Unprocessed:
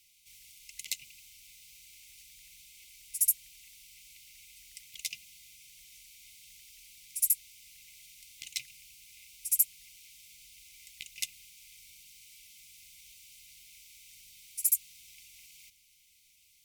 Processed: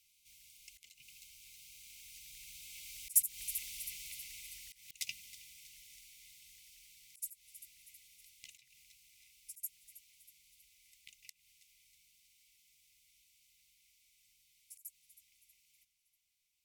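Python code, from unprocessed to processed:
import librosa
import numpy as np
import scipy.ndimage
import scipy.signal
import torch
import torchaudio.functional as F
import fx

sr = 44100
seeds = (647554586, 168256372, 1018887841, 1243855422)

y = fx.doppler_pass(x, sr, speed_mps=6, closest_m=3.8, pass_at_s=3.58)
y = fx.echo_feedback(y, sr, ms=320, feedback_pct=52, wet_db=-21.5)
y = fx.auto_swell(y, sr, attack_ms=193.0)
y = F.gain(torch.from_numpy(y), 8.5).numpy()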